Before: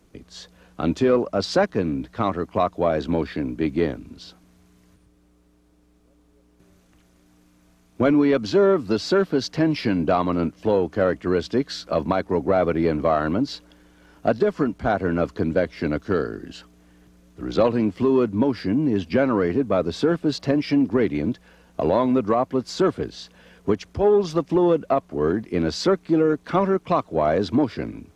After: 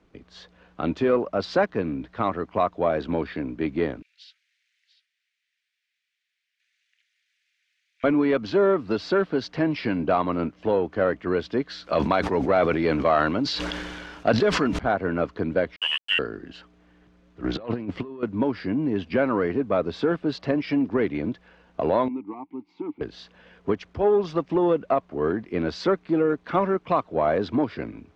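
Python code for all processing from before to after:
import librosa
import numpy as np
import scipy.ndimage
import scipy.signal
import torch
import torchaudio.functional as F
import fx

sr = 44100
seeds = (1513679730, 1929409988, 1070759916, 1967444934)

y = fx.chain(x, sr, fx.steep_highpass(hz=1800.0, slope=48),
    fx.echo_single(ms=692, db=-14.5), at=(4.02, 8.04))
y = fx.chain(y, sr, fx.high_shelf(hz=2400.0, db=11.0),
    fx.sustainer(db_per_s=29.0), at=(11.84, 14.79))
y = fx.chain(y, sr, fx.freq_invert(carrier_hz=3200),
    fx.sample_gate(floor_db=-29.0), at=(15.76, 16.19))
y = fx.chain(y, sr, fx.low_shelf(hz=62.0, db=5.0),
    fx.over_compress(threshold_db=-25.0, ratio=-0.5),
    fx.doppler_dist(depth_ms=0.15), at=(17.44, 18.23))
y = fx.chain(y, sr, fx.vowel_filter(vowel='u'),
    fx.low_shelf(hz=120.0, db=7.0), at=(22.08, 23.01))
y = scipy.signal.sosfilt(scipy.signal.butter(2, 3200.0, 'lowpass', fs=sr, output='sos'), y)
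y = fx.low_shelf(y, sr, hz=410.0, db=-5.5)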